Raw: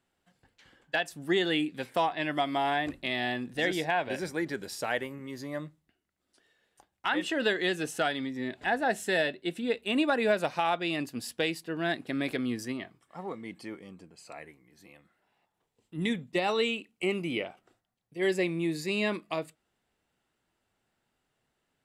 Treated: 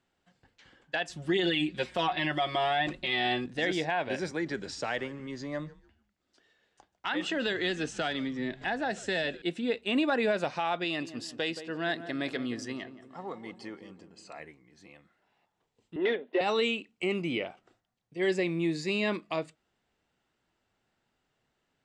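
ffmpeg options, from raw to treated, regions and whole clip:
-filter_complex "[0:a]asettb=1/sr,asplit=3[a][b][c];[a]atrim=end=1.094[d];[b]atrim=start=1.09:end=3.46,asetpts=PTS-STARTPTS,afade=t=in:d=0.004:c=qsin,afade=t=out:st=2.366:d=0.004:c=qsin,aeval=exprs='val(0)+0.000708*(sin(2*PI*60*n/s)+sin(2*PI*2*60*n/s)/2+sin(2*PI*3*60*n/s)/3+sin(2*PI*4*60*n/s)/4+sin(2*PI*5*60*n/s)/5)':c=same,equalizer=f=3.2k:t=o:w=0.79:g=4,aecho=1:1:5.5:0.99,atrim=end_sample=104517[e];[c]atrim=start=3.456[f];[d][e]acrossfade=d=0.004:c1=hsin:c2=qsin[g];[g][f]acrossfade=d=0.004:c1=qsin:c2=hsin,asettb=1/sr,asplit=3[h][i][j];[h]atrim=end=4.314[k];[i]atrim=start=4.31:end=9.42,asetpts=PTS-STARTPTS,afade=t=in:d=0.004:c=qsin,afade=t=out:st=5.106:d=0.004:c=qsin,lowpass=f=8.9k:w=0.5412,lowpass=f=8.9k:w=1.3066,acrossover=split=190|3000[l][m][n];[m]acompressor=threshold=-28dB:ratio=6:attack=3.2:release=140:knee=2.83:detection=peak[o];[l][o][n]amix=inputs=3:normalize=0,asplit=4[p][q][r][s];[q]adelay=148,afreqshift=-120,volume=-20dB[t];[r]adelay=296,afreqshift=-240,volume=-29.9dB[u];[s]adelay=444,afreqshift=-360,volume=-39.8dB[v];[p][t][u][v]amix=inputs=4:normalize=0,atrim=end_sample=225351[w];[j]atrim=start=9.416[x];[k][w]acrossfade=d=0.004:c1=hsin:c2=qsin[y];[y][x]acrossfade=d=0.004:c1=qsin:c2=hsin,asettb=1/sr,asplit=3[z][aa][ab];[z]atrim=end=10.844[ac];[aa]atrim=start=10.84:end=14.4,asetpts=PTS-STARTPTS,afade=t=in:d=0.004:c=qsin,afade=t=out:st=3.556:d=0.004:c=qsin,lowshelf=f=440:g=-5.5,bandreject=f=2.3k:w=8.8,asplit=2[ad][ae];[ae]adelay=174,lowpass=f=1.1k:p=1,volume=-11dB,asplit=2[af][ag];[ag]adelay=174,lowpass=f=1.1k:p=1,volume=0.54,asplit=2[ah][ai];[ai]adelay=174,lowpass=f=1.1k:p=1,volume=0.54,asplit=2[aj][ak];[ak]adelay=174,lowpass=f=1.1k:p=1,volume=0.54,asplit=2[al][am];[am]adelay=174,lowpass=f=1.1k:p=1,volume=0.54,asplit=2[an][ao];[ao]adelay=174,lowpass=f=1.1k:p=1,volume=0.54[ap];[ad][af][ah][aj][al][an][ap]amix=inputs=7:normalize=0,atrim=end_sample=156996[aq];[ab]atrim=start=14.396[ar];[ac][aq]acrossfade=d=0.004:c1=hsin:c2=qsin[as];[as][ar]acrossfade=d=0.004:c1=qsin:c2=hsin,asettb=1/sr,asplit=3[at][au][av];[at]atrim=end=15.964[aw];[au]atrim=start=15.96:end=16.41,asetpts=PTS-STARTPTS,afade=t=in:d=0.004:c=qsin,afade=t=out:st=0.446:d=0.004:c=qsin,asplit=2[ax][ay];[ay]highpass=f=720:p=1,volume=19dB,asoftclip=type=tanh:threshold=-16dB[az];[ax][az]amix=inputs=2:normalize=0,lowpass=f=2.4k:p=1,volume=-6dB,highpass=f=330:w=0.5412,highpass=f=330:w=1.3066,equalizer=f=400:t=q:w=4:g=9,equalizer=f=610:t=q:w=4:g=4,equalizer=f=1.2k:t=q:w=4:g=-10,equalizer=f=2.3k:t=q:w=4:g=-8,lowpass=f=3.1k:w=0.5412,lowpass=f=3.1k:w=1.3066[ba];[av]atrim=start=16.406[bb];[aw][ba]acrossfade=d=0.004:c1=hsin:c2=qsin[bc];[bc][bb]acrossfade=d=0.004:c1=qsin:c2=hsin,lowpass=f=7.4k:w=0.5412,lowpass=f=7.4k:w=1.3066,alimiter=limit=-20dB:level=0:latency=1:release=20,volume=1dB"

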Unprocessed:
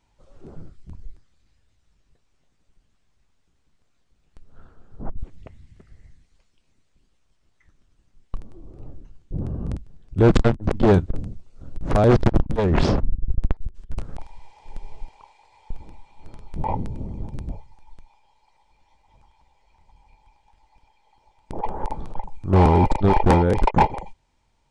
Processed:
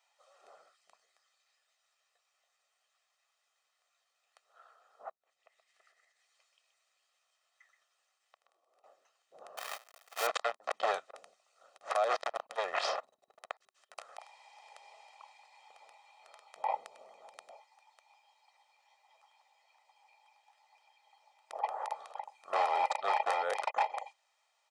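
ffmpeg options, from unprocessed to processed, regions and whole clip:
-filter_complex "[0:a]asettb=1/sr,asplit=3[a][b][c];[a]atrim=end=5.114[d];[b]atrim=start=5.11:end=8.84,asetpts=PTS-STARTPTS,afade=t=in:d=0.004:c=qsin,afade=t=out:st=3.726:d=0.004:c=qsin,acompressor=threshold=-47dB:ratio=16:attack=3.2:release=140:knee=1:detection=peak,aecho=1:1:126:0.398,atrim=end_sample=164493[e];[c]atrim=start=8.836[f];[d][e]acrossfade=d=0.004:c1=hsin:c2=qsin[g];[g][f]acrossfade=d=0.004:c1=qsin:c2=hsin,asettb=1/sr,asplit=3[h][i][j];[h]atrim=end=9.574[k];[i]atrim=start=9.57:end=10.27,asetpts=PTS-STARTPTS,afade=t=in:d=0.004:c=qsin,afade=t=out:st=0.696:d=0.004:c=qsin,acrusher=bits=2:mode=log:mix=0:aa=0.000001,acompressor=threshold=-16dB:ratio=3:attack=3.2:release=140:knee=1:detection=peak[l];[j]atrim=start=10.266[m];[k][l]acrossfade=d=0.004:c1=hsin:c2=qsin[n];[n][m]acrossfade=d=0.004:c1=qsin:c2=hsin,highpass=f=710:w=0.5412,highpass=f=710:w=1.3066,aecho=1:1:1.6:0.58,alimiter=limit=-17.5dB:level=0:latency=1:release=162,volume=-2.5dB"

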